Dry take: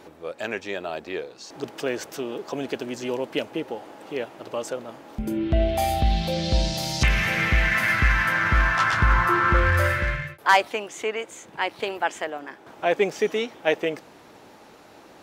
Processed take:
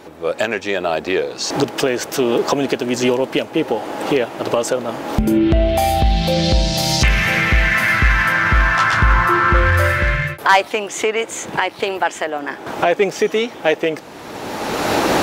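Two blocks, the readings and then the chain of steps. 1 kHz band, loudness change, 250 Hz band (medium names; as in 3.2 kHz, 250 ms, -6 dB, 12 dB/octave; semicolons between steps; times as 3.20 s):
+7.0 dB, +7.0 dB, +10.5 dB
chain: recorder AGC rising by 25 dB/s; in parallel at -6 dB: saturation -16.5 dBFS, distortion -14 dB; on the sum: trim +3 dB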